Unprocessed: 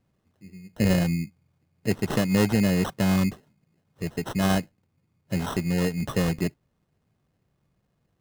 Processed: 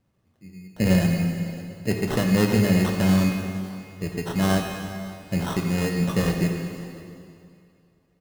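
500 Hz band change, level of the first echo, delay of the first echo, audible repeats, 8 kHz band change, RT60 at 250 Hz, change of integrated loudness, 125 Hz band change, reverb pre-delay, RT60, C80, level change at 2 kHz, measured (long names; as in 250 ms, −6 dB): +2.0 dB, −21.5 dB, 553 ms, 1, +2.0 dB, 2.4 s, +1.5 dB, +3.0 dB, 6 ms, 2.4 s, 4.5 dB, +2.5 dB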